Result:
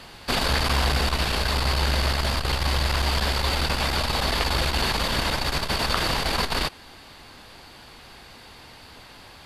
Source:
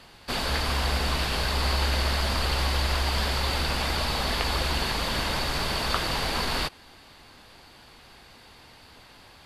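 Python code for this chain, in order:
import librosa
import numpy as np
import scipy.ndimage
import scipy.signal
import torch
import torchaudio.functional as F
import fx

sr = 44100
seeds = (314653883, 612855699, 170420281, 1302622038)

y = fx.rider(x, sr, range_db=4, speed_s=2.0)
y = fx.transformer_sat(y, sr, knee_hz=250.0)
y = y * 10.0 ** (4.5 / 20.0)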